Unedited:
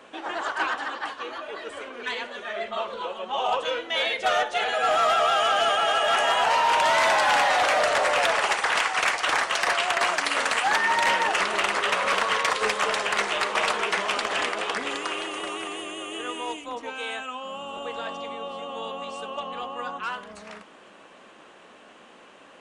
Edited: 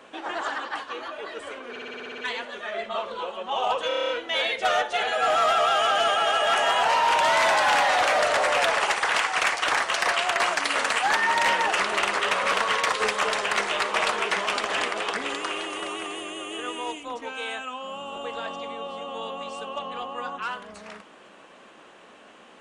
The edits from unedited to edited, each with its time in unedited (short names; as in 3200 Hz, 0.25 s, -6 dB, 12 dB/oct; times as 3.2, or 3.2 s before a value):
0.5–0.8 cut
2 stutter 0.06 s, 9 plays
3.7 stutter 0.03 s, 8 plays